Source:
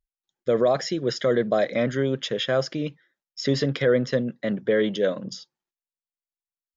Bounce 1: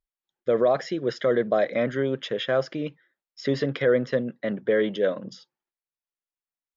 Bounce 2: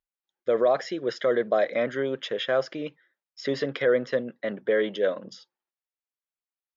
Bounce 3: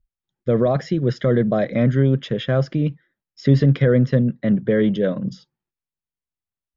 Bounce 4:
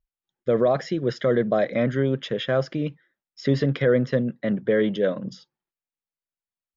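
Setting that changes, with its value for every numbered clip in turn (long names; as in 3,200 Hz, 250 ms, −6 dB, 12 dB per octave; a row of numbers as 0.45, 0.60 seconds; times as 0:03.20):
bass and treble, bass: −5, −15, +15, +4 decibels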